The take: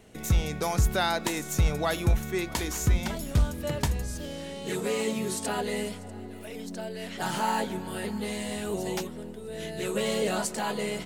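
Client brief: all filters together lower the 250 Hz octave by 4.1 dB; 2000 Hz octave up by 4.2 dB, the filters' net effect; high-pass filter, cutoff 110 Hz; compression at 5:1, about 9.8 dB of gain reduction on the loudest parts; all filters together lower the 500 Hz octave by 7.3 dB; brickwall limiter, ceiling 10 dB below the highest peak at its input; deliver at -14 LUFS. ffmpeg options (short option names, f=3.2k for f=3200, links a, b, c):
-af "highpass=110,equalizer=f=250:t=o:g=-3,equalizer=f=500:t=o:g=-9,equalizer=f=2k:t=o:g=6,acompressor=threshold=-34dB:ratio=5,volume=24.5dB,alimiter=limit=-3.5dB:level=0:latency=1"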